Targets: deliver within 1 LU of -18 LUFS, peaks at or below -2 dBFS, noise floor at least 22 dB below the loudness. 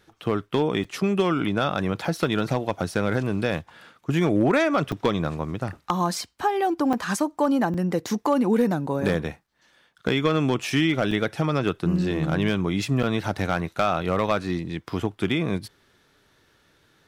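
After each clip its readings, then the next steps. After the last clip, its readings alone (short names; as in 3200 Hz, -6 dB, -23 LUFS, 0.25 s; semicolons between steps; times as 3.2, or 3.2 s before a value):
clipped 0.2%; flat tops at -12.5 dBFS; dropouts 7; longest dropout 4.5 ms; loudness -24.5 LUFS; peak -12.5 dBFS; loudness target -18.0 LUFS
-> clip repair -12.5 dBFS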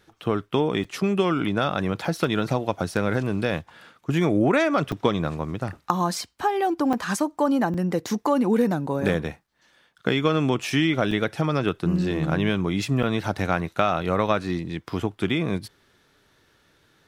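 clipped 0.0%; dropouts 7; longest dropout 4.5 ms
-> interpolate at 0.84/2.05/4.92/6.93/7.74/11.11/13.03, 4.5 ms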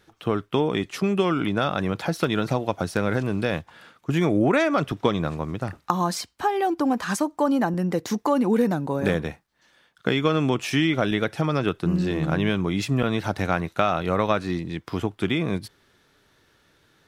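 dropouts 0; loudness -24.5 LUFS; peak -4.0 dBFS; loudness target -18.0 LUFS
-> gain +6.5 dB; limiter -2 dBFS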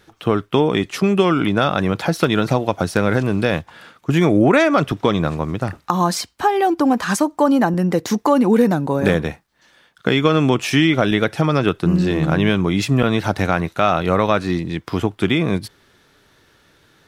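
loudness -18.0 LUFS; peak -2.0 dBFS; noise floor -57 dBFS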